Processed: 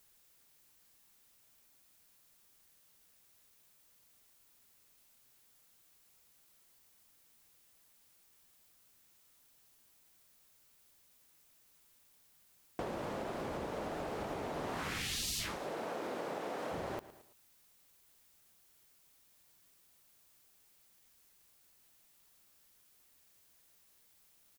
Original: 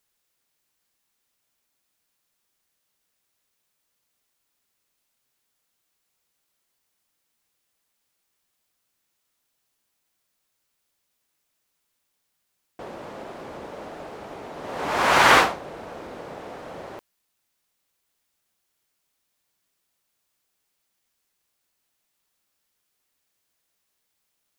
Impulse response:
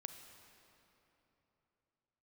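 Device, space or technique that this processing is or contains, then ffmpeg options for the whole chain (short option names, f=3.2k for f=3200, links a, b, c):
ASMR close-microphone chain: -filter_complex "[0:a]asettb=1/sr,asplit=3[a][b][c];[a]atrim=end=15.564[d];[b]atrim=start=15.56:end=16.72,asetpts=PTS-STARTPTS,afade=t=in:d=0.004:c=qsin,afade=t=out:st=1.156:d=0.004:c=qsin,highpass=240[e];[c]atrim=start=16.716[f];[d][e]acrossfade=d=0.004:c1=hsin:c2=qsin[g];[g][f]acrossfade=d=0.004:c1=qsin:c2=hsin,afftfilt=real='re*lt(hypot(re,im),0.126)':imag='im*lt(hypot(re,im),0.126)':win_size=1024:overlap=0.75,lowshelf=f=210:g=6,aecho=1:1:111|222|333:0.1|0.039|0.0152,acompressor=threshold=-41dB:ratio=10,highshelf=f=8.4k:g=6,volume=4.5dB"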